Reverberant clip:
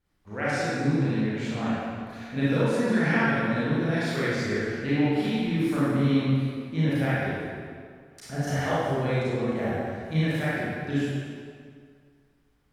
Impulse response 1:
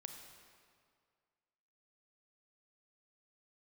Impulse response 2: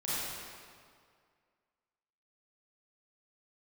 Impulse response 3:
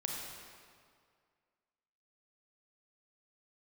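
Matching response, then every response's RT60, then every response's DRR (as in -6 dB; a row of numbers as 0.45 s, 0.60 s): 2; 2.1 s, 2.1 s, 2.1 s; 4.0 dB, -11.0 dB, -1.0 dB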